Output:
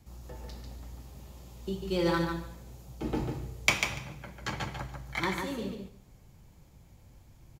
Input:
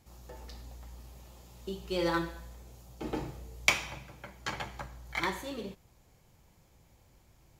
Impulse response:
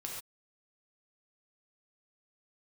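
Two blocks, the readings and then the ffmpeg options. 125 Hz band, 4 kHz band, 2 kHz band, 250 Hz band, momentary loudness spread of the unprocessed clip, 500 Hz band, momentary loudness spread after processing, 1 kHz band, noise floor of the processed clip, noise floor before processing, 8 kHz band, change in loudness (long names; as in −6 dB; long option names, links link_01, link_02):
+7.0 dB, +1.0 dB, +1.0 dB, +4.5 dB, 22 LU, +2.5 dB, 20 LU, +1.0 dB, −57 dBFS, −64 dBFS, +1.0 dB, +1.5 dB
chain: -filter_complex "[0:a]acrossover=split=290|600|6400[link_01][link_02][link_03][link_04];[link_01]acontrast=76[link_05];[link_05][link_02][link_03][link_04]amix=inputs=4:normalize=0,aecho=1:1:145|290|435:0.531|0.0796|0.0119"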